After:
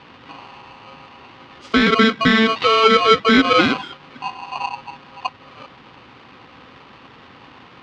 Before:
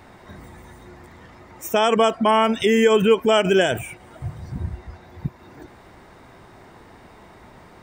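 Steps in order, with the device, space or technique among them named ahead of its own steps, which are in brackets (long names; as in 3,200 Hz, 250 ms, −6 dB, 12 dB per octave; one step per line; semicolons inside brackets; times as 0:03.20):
ring modulator pedal into a guitar cabinet (ring modulator with a square carrier 890 Hz; loudspeaker in its box 78–4,000 Hz, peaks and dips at 120 Hz +4 dB, 270 Hz +7 dB, 650 Hz −9 dB, 1,700 Hz −5 dB)
level +4 dB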